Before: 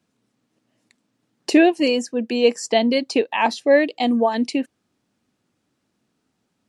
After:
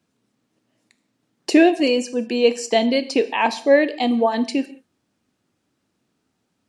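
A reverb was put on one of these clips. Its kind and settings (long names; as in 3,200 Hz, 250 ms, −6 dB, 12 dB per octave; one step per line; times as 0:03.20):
reverb whose tail is shaped and stops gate 220 ms falling, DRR 11 dB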